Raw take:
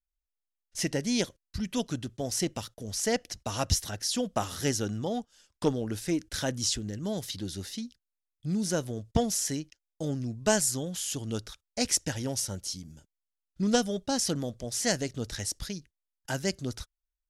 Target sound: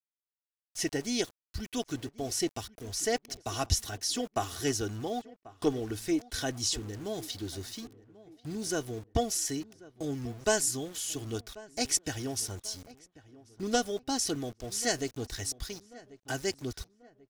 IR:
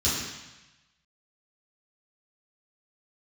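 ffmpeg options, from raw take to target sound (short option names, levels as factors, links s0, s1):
-filter_complex "[0:a]aecho=1:1:2.7:0.63,aeval=exprs='val(0)*gte(abs(val(0)),0.00708)':c=same,asplit=2[s0][s1];[s1]adelay=1089,lowpass=f=1800:p=1,volume=0.112,asplit=2[s2][s3];[s3]adelay=1089,lowpass=f=1800:p=1,volume=0.44,asplit=2[s4][s5];[s5]adelay=1089,lowpass=f=1800:p=1,volume=0.44[s6];[s0][s2][s4][s6]amix=inputs=4:normalize=0,volume=0.708"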